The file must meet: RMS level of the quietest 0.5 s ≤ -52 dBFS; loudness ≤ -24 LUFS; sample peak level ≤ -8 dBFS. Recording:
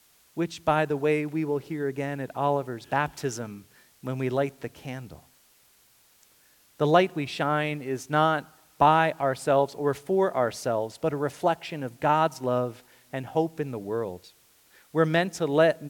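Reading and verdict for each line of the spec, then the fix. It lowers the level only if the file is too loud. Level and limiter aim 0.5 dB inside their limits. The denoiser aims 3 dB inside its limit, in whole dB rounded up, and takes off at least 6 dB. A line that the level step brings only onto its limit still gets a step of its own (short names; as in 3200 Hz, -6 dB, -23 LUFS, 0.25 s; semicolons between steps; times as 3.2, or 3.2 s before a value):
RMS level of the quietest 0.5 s -61 dBFS: OK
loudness -26.5 LUFS: OK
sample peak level -5.5 dBFS: fail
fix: limiter -8.5 dBFS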